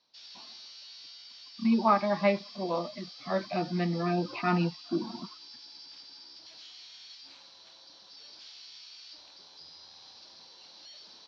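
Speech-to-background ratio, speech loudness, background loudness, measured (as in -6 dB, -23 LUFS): 17.5 dB, -29.5 LUFS, -47.0 LUFS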